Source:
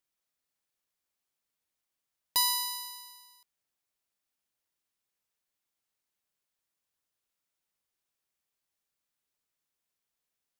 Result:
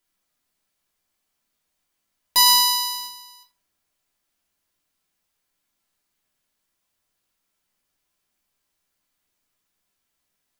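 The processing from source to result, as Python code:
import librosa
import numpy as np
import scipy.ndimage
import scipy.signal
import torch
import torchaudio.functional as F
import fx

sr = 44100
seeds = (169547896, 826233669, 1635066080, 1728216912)

y = fx.leveller(x, sr, passes=1, at=(2.46, 3.07))
y = fx.room_shoebox(y, sr, seeds[0], volume_m3=320.0, walls='furnished', distance_m=3.0)
y = y * 10.0 ** (5.0 / 20.0)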